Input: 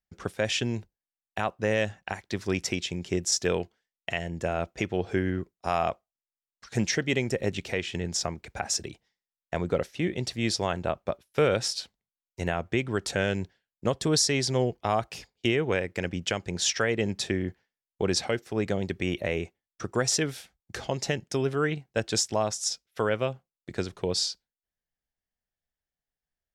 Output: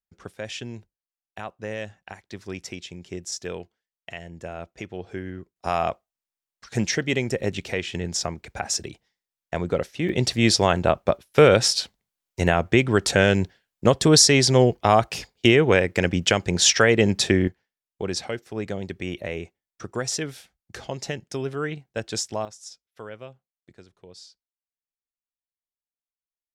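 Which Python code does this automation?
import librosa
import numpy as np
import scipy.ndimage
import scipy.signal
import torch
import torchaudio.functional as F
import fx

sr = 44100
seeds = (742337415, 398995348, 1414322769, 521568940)

y = fx.gain(x, sr, db=fx.steps((0.0, -6.5), (5.56, 2.5), (10.09, 9.0), (17.48, -2.0), (22.45, -12.5), (23.73, -18.5)))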